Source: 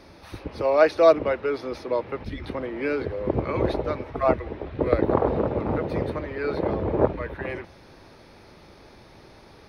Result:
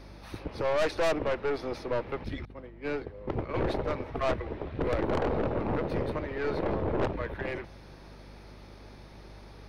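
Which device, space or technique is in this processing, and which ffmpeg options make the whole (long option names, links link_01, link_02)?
valve amplifier with mains hum: -filter_complex "[0:a]asettb=1/sr,asplit=3[link_01][link_02][link_03];[link_01]atrim=end=2.454[link_04];[link_02]atrim=start=2.45:end=3.54,asetpts=PTS-STARTPTS,afade=type=in:duration=0.004:curve=qsin,afade=type=out:start_time=1.086:duration=0.004:curve=qsin,agate=range=-33dB:threshold=-20dB:ratio=3:detection=peak[link_05];[link_03]atrim=start=3.536[link_06];[link_04][link_05]acrossfade=duration=0.004:curve1=hsin:curve2=qsin[link_07];[link_07][link_06]acrossfade=duration=0.004:curve1=qsin:curve2=hsin,aeval=exprs='(tanh(15.8*val(0)+0.55)-tanh(0.55))/15.8':channel_layout=same,aeval=exprs='val(0)+0.00355*(sin(2*PI*50*n/s)+sin(2*PI*2*50*n/s)/2+sin(2*PI*3*50*n/s)/3+sin(2*PI*4*50*n/s)/4+sin(2*PI*5*50*n/s)/5)':channel_layout=same"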